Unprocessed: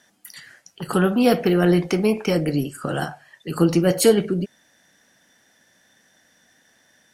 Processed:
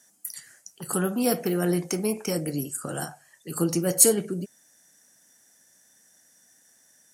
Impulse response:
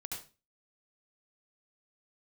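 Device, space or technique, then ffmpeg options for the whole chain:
budget condenser microphone: -af "highpass=74,highshelf=frequency=5200:width_type=q:width=1.5:gain=13.5,volume=-7.5dB"

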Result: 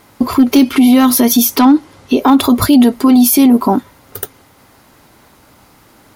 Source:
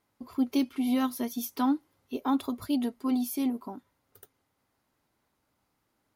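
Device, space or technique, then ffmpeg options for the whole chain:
loud club master: -filter_complex "[0:a]acompressor=threshold=-30dB:ratio=1.5,asoftclip=type=hard:threshold=-22.5dB,alimiter=level_in=31dB:limit=-1dB:release=50:level=0:latency=1,asettb=1/sr,asplit=3[link_01][link_02][link_03];[link_01]atrim=end=1.594[link_04];[link_02]atrim=start=1.59:end=2.21,asetpts=PTS-STARTPTS,afade=type=in:duration=0.004:curve=qsin,afade=type=out:start_time=0.616:duration=0.004:curve=qsin,lowpass=8900[link_05];[link_03]atrim=start=2.206[link_06];[link_04][link_05]acrossfade=duration=0.004:curve1=hsin:curve2=qsin[link_07];[link_07][link_06]acrossfade=duration=0.004:curve1=qsin:curve2=hsin,volume=-1dB"

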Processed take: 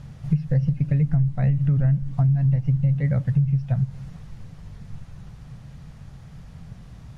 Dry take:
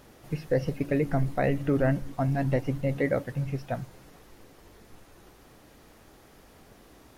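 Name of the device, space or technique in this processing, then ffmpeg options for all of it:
jukebox: -af "lowpass=7800,lowshelf=frequency=220:width_type=q:width=3:gain=14,acompressor=threshold=-19dB:ratio=6,volume=1dB"

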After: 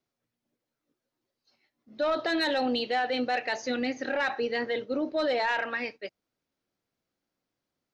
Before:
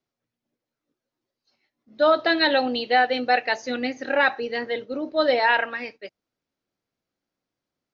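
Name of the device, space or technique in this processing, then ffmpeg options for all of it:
soft clipper into limiter: -af "asoftclip=type=tanh:threshold=-12.5dB,alimiter=limit=-21dB:level=0:latency=1:release=27"

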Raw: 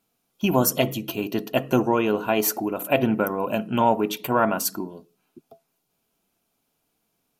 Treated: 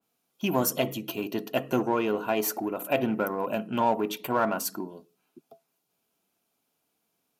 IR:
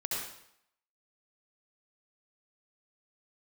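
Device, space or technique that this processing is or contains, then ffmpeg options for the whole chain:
parallel distortion: -filter_complex "[0:a]asplit=2[link_01][link_02];[link_02]asoftclip=type=hard:threshold=-22dB,volume=-6.5dB[link_03];[link_01][link_03]amix=inputs=2:normalize=0,highpass=frequency=180:poles=1,adynamicequalizer=threshold=0.0158:dfrequency=2300:dqfactor=0.7:tfrequency=2300:tqfactor=0.7:attack=5:release=100:ratio=0.375:range=1.5:mode=cutabove:tftype=highshelf,volume=-6dB"

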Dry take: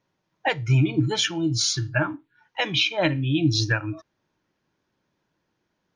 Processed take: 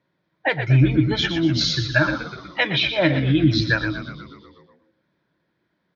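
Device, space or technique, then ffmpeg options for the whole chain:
frequency-shifting delay pedal into a guitar cabinet: -filter_complex "[0:a]asplit=9[link_01][link_02][link_03][link_04][link_05][link_06][link_07][link_08][link_09];[link_02]adelay=122,afreqshift=-80,volume=-11dB[link_10];[link_03]adelay=244,afreqshift=-160,volume=-15dB[link_11];[link_04]adelay=366,afreqshift=-240,volume=-19dB[link_12];[link_05]adelay=488,afreqshift=-320,volume=-23dB[link_13];[link_06]adelay=610,afreqshift=-400,volume=-27.1dB[link_14];[link_07]adelay=732,afreqshift=-480,volume=-31.1dB[link_15];[link_08]adelay=854,afreqshift=-560,volume=-35.1dB[link_16];[link_09]adelay=976,afreqshift=-640,volume=-39.1dB[link_17];[link_01][link_10][link_11][link_12][link_13][link_14][link_15][link_16][link_17]amix=inputs=9:normalize=0,highpass=87,equalizer=frequency=100:width_type=q:width=4:gain=-8,equalizer=frequency=230:width_type=q:width=4:gain=-4,equalizer=frequency=430:width_type=q:width=4:gain=-5,equalizer=frequency=810:width_type=q:width=4:gain=-9,equalizer=frequency=1200:width_type=q:width=4:gain=-5,equalizer=frequency=2800:width_type=q:width=4:gain=-10,lowpass=frequency=3900:width=0.5412,lowpass=frequency=3900:width=1.3066,asettb=1/sr,asplit=3[link_18][link_19][link_20];[link_18]atrim=end=1.504[link_21];[link_19]atrim=start=1.5:end=2.67,asetpts=PTS-STARTPTS,afade=type=in:duration=0.004:curve=qsin,afade=type=out:start_time=1.166:duration=0.004:curve=qsin,equalizer=frequency=3800:width=0.38:gain=4[link_22];[link_20]atrim=start=2.666[link_23];[link_21][link_22]acrossfade=duration=0.004:curve1=hsin:curve2=qsin[link_24];[link_24][link_23]acrossfade=duration=0.004:curve1=qsin:curve2=hsin,aecho=1:1:115:0.251,volume=6dB"

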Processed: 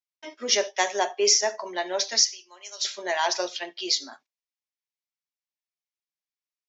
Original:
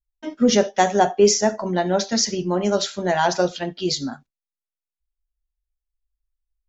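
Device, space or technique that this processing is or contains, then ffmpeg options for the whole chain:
phone speaker on a table: -filter_complex "[0:a]highpass=frequency=470:width=0.5412,highpass=frequency=470:width=1.3066,equalizer=frequency=500:width_type=q:width=4:gain=-10,equalizer=frequency=760:width_type=q:width=4:gain=-9,equalizer=frequency=1400:width_type=q:width=4:gain=-9,equalizer=frequency=2200:width_type=q:width=4:gain=4,equalizer=frequency=5500:width_type=q:width=4:gain=4,lowpass=frequency=6800:width=0.5412,lowpass=frequency=6800:width=1.3066,asettb=1/sr,asplit=3[link_01][link_02][link_03];[link_01]atrim=end=2.234[link_04];[link_02]atrim=start=2.23:end=2.85,asetpts=PTS-STARTPTS,afade=type=in:duration=0.004:curve=qsin,afade=type=out:start_time=0.616:duration=0.004:curve=qsin,aderivative[link_05];[link_03]atrim=start=2.846[link_06];[link_04][link_05]acrossfade=duration=0.004:curve1=hsin:curve2=qsin[link_07];[link_07][link_06]acrossfade=duration=0.004:curve1=qsin:curve2=hsin"

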